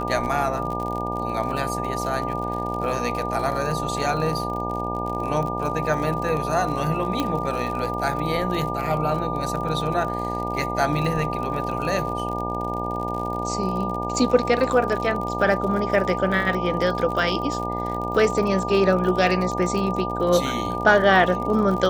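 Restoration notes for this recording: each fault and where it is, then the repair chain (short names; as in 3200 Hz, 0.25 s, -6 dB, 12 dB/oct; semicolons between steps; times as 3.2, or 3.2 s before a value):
buzz 60 Hz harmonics 16 -29 dBFS
crackle 54/s -29 dBFS
tone 1200 Hz -28 dBFS
7.2 pop -10 dBFS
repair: de-click; de-hum 60 Hz, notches 16; notch 1200 Hz, Q 30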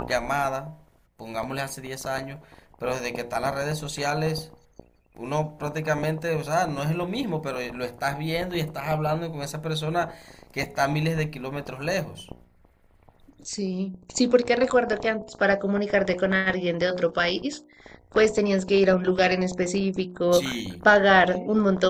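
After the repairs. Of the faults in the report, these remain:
7.2 pop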